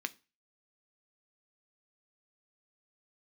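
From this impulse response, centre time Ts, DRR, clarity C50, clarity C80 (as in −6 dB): 2 ms, 10.0 dB, 23.0 dB, 29.0 dB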